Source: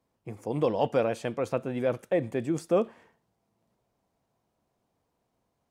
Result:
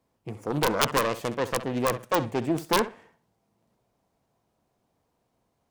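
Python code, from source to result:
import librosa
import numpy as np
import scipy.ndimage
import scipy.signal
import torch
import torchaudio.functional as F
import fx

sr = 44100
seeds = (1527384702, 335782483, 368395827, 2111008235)

p1 = fx.self_delay(x, sr, depth_ms=0.68)
p2 = p1 + fx.room_flutter(p1, sr, wall_m=11.1, rt60_s=0.27, dry=0)
p3 = (np.mod(10.0 ** (15.0 / 20.0) * p2 + 1.0, 2.0) - 1.0) / 10.0 ** (15.0 / 20.0)
y = p3 * librosa.db_to_amplitude(3.0)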